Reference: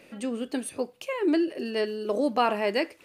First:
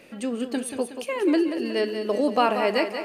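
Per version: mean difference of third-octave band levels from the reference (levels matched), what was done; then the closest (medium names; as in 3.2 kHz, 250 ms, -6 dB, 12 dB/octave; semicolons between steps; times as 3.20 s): 3.5 dB: thinning echo 184 ms, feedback 56%, high-pass 150 Hz, level -8.5 dB; trim +2.5 dB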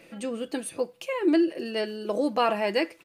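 1.0 dB: comb 6 ms, depth 42%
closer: second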